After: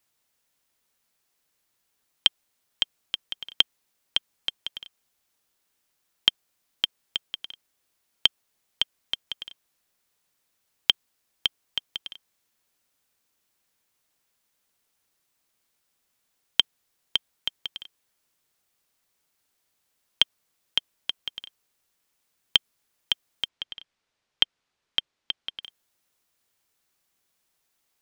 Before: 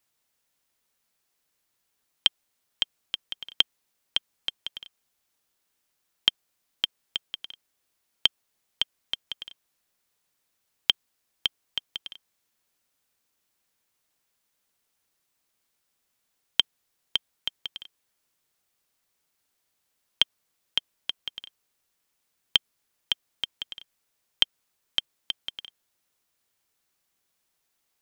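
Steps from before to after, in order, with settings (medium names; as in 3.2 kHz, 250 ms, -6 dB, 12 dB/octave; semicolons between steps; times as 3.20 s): 23.48–25.63 s: low-pass 4.7 kHz 12 dB/octave; trim +1.5 dB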